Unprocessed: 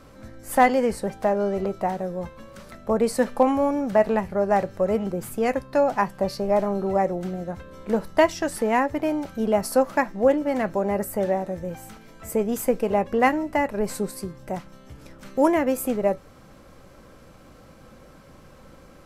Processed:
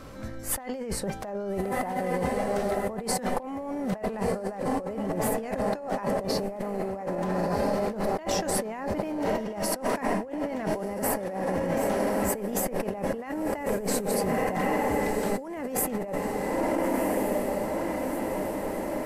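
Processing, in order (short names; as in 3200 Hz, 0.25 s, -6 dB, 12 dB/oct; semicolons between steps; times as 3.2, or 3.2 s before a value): on a send: diffused feedback echo 1.35 s, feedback 64%, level -9.5 dB; on the sum: negative-ratio compressor -30 dBFS, ratio -1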